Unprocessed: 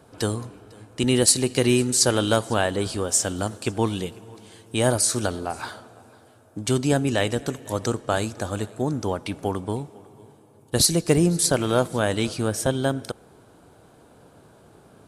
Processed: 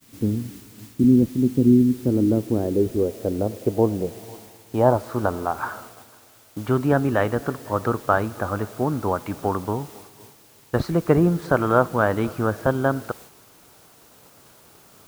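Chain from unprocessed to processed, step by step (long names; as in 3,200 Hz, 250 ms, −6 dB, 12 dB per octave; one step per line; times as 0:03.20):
low-pass filter sweep 250 Hz → 1,300 Hz, 0:01.85–0:05.70
bit-depth reduction 8 bits, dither triangular
downward expander −40 dBFS
level +1 dB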